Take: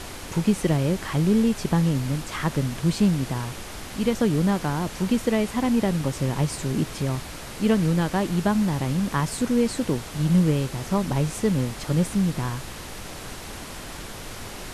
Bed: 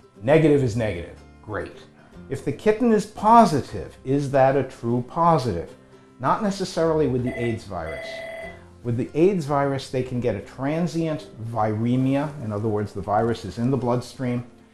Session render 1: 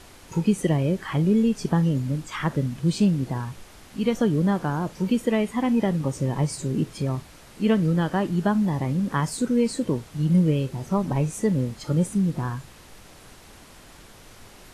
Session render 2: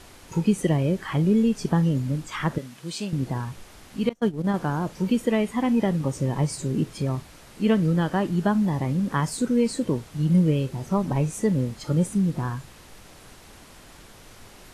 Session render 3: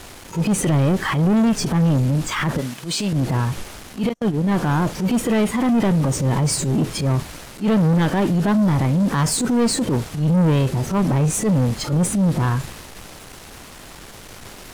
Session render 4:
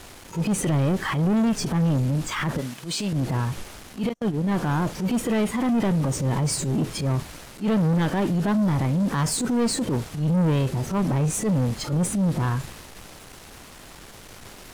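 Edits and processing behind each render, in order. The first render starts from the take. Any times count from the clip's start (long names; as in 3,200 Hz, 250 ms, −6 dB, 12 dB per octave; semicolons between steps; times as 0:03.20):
noise reduction from a noise print 11 dB
0:02.58–0:03.13: high-pass filter 850 Hz 6 dB per octave; 0:04.09–0:04.54: noise gate −21 dBFS, range −30 dB
transient designer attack −12 dB, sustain +2 dB; leveller curve on the samples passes 3
level −4.5 dB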